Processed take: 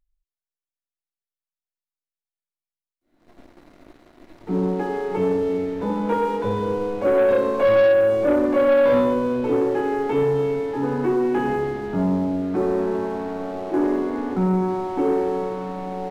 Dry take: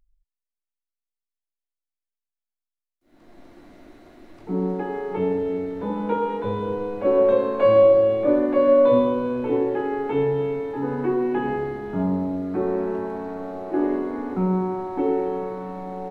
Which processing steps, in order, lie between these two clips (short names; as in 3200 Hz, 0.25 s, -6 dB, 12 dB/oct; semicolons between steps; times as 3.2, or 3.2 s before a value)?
sample leveller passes 2; gain -4.5 dB